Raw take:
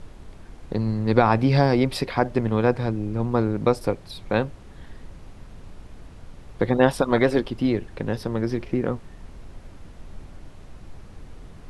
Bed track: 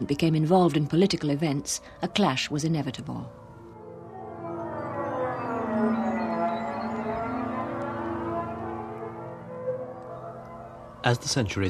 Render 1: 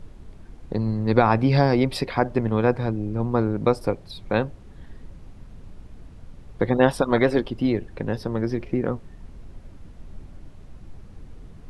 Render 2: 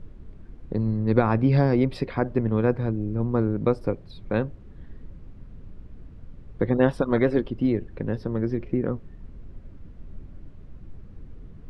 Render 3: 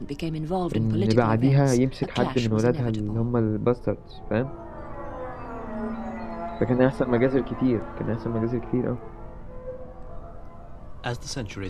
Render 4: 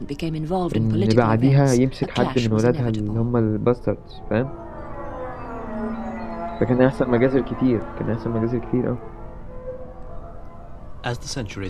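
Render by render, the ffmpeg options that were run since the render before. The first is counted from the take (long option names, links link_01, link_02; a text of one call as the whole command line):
ffmpeg -i in.wav -af "afftdn=noise_reduction=6:noise_floor=-44" out.wav
ffmpeg -i in.wav -af "lowpass=frequency=1300:poles=1,equalizer=frequency=800:width=1.6:gain=-6.5" out.wav
ffmpeg -i in.wav -i bed.wav -filter_complex "[1:a]volume=-6.5dB[link_01];[0:a][link_01]amix=inputs=2:normalize=0" out.wav
ffmpeg -i in.wav -af "volume=3.5dB" out.wav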